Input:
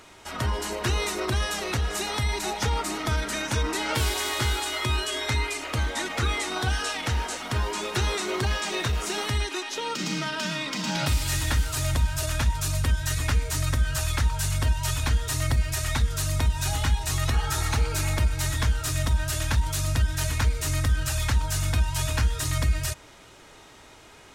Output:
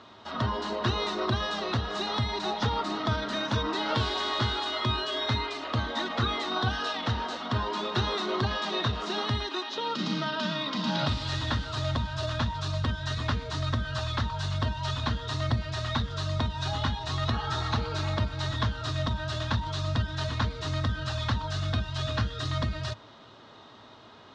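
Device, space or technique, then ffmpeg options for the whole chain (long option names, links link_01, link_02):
guitar cabinet: -filter_complex "[0:a]highpass=100,equalizer=frequency=110:width_type=q:width=4:gain=7,equalizer=frequency=230:width_type=q:width=4:gain=8,equalizer=frequency=640:width_type=q:width=4:gain=4,equalizer=frequency=1100:width_type=q:width=4:gain=7,equalizer=frequency=2300:width_type=q:width=4:gain=-9,equalizer=frequency=3800:width_type=q:width=4:gain=6,lowpass=frequency=4600:width=0.5412,lowpass=frequency=4600:width=1.3066,asettb=1/sr,asplit=3[link_01][link_02][link_03];[link_01]atrim=end=21.474[link_04];[link_02]atrim=start=21.47:end=22.51,asetpts=PTS-STARTPTS,afade=type=in:duration=0.004:curve=qsin,afade=type=out:start_time=1.036:duration=0.004:curve=qsin,bandreject=frequency=950:width=6.6[link_05];[link_03]atrim=start=22.506[link_06];[link_04][link_05]acrossfade=duration=0.004:curve1=hsin:curve2=qsin[link_07];[link_07][link_06]acrossfade=duration=0.004:curve1=qsin:curve2=hsin,volume=-2.5dB"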